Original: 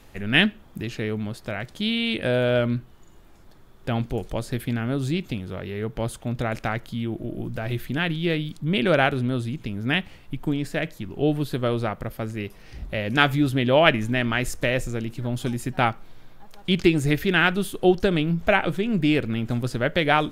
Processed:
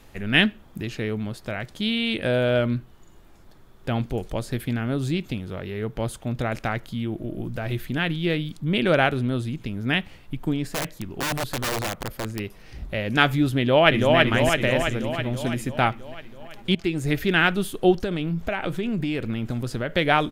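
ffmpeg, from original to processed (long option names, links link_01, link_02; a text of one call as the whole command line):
ffmpeg -i in.wav -filter_complex "[0:a]asplit=3[link_01][link_02][link_03];[link_01]afade=type=out:start_time=10.7:duration=0.02[link_04];[link_02]aeval=exprs='(mod(10.6*val(0)+1,2)-1)/10.6':channel_layout=same,afade=type=in:start_time=10.7:duration=0.02,afade=type=out:start_time=12.38:duration=0.02[link_05];[link_03]afade=type=in:start_time=12.38:duration=0.02[link_06];[link_04][link_05][link_06]amix=inputs=3:normalize=0,asplit=2[link_07][link_08];[link_08]afade=type=in:start_time=13.58:duration=0.01,afade=type=out:start_time=14.16:duration=0.01,aecho=0:1:330|660|990|1320|1650|1980|2310|2640|2970|3300|3630:0.794328|0.516313|0.335604|0.218142|0.141793|0.0921652|0.0599074|0.0389398|0.0253109|0.0164521|0.0106938[link_09];[link_07][link_09]amix=inputs=2:normalize=0,asettb=1/sr,asplit=3[link_10][link_11][link_12];[link_10]atrim=end=18.004[link_13];[link_11]atrim=start=18:end=19.91,asetpts=PTS-STARTPTS,afade=type=in:duration=0.004:curve=qsin,afade=type=out:start_time=1.906:duration=0.004:curve=qsin,acompressor=threshold=-21dB:ratio=10:attack=3.2:release=140:knee=1:detection=peak[link_14];[link_12]atrim=start=19.906[link_15];[link_13][link_14]acrossfade=duration=0.004:curve1=hsin:curve2=qsin[link_16];[link_16][link_15]acrossfade=duration=0.004:curve1=qsin:curve2=hsin,asplit=2[link_17][link_18];[link_17]atrim=end=16.75,asetpts=PTS-STARTPTS,afade=type=out:start_time=16.746:duration=0.004:curve=hsin:silence=0.237137[link_19];[link_18]atrim=start=16.75,asetpts=PTS-STARTPTS,afade=type=in:duration=0.49:silence=0.237137[link_20];[link_19][link_20]concat=n=2:v=0:a=1" out.wav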